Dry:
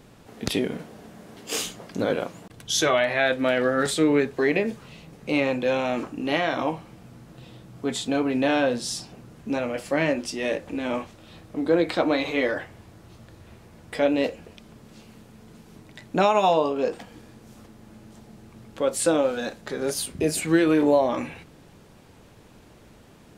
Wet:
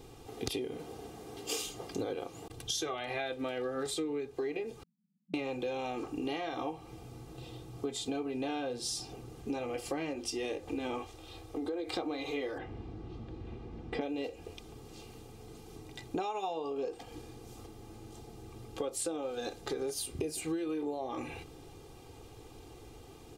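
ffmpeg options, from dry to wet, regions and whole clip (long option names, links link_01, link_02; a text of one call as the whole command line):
ffmpeg -i in.wav -filter_complex "[0:a]asettb=1/sr,asplit=3[link_01][link_02][link_03];[link_01]atrim=end=4.834[link_04];[link_02]atrim=start=4.83:end=5.34,asetpts=PTS-STARTPTS,afade=type=in:duration=0.004:curve=qsin,afade=type=out:start_time=0.506:duration=0.004:curve=qsin,aeval=exprs='val(0)*sin(2*PI*700*n/s)':channel_layout=same,asuperpass=centerf=190:order=8:qfactor=3.6[link_05];[link_03]atrim=start=5.336[link_06];[link_04][link_05]acrossfade=duration=0.004:curve1=hsin:curve2=qsin[link_07];[link_07][link_06]acrossfade=duration=0.004:curve1=qsin:curve2=hsin,asettb=1/sr,asplit=3[link_08][link_09][link_10];[link_08]atrim=end=11.034[link_11];[link_09]atrim=start=11.03:end=11.93,asetpts=PTS-STARTPTS,afade=type=in:duration=0.004:curve=qsin,afade=type=out:start_time=0.896:duration=0.004:curve=qsin,equalizer=frequency=170:width=1.6:gain=-11,acompressor=threshold=-31dB:ratio=2.5:attack=3.2:release=140:knee=1:detection=peak[link_12];[link_10]atrim=start=11.926[link_13];[link_11][link_12]acrossfade=duration=0.004:curve1=hsin:curve2=qsin[link_14];[link_14][link_13]acrossfade=duration=0.004:curve1=qsin:curve2=hsin,asettb=1/sr,asplit=3[link_15][link_16][link_17];[link_15]atrim=end=12.584[link_18];[link_16]atrim=start=12.58:end=14.01,asetpts=PTS-STARTPTS,afade=type=in:duration=0.004:curve=qsin,afade=type=out:start_time=1.426:duration=0.004:curve=qsin,lowpass=3100,equalizer=frequency=220:width=1.4:gain=12,aeval=exprs='val(0)+0.00282*(sin(2*PI*50*n/s)+sin(2*PI*2*50*n/s)/2+sin(2*PI*3*50*n/s)/3+sin(2*PI*4*50*n/s)/4+sin(2*PI*5*50*n/s)/5)':channel_layout=same[link_19];[link_17]atrim=start=14.006[link_20];[link_18][link_19]acrossfade=duration=0.004:curve1=hsin:curve2=qsin[link_21];[link_21][link_20]acrossfade=duration=0.004:curve1=qsin:curve2=hsin,equalizer=frequency=1700:width=2.2:gain=-9.5,aecho=1:1:2.5:0.74,acompressor=threshold=-31dB:ratio=12,volume=-1.5dB" out.wav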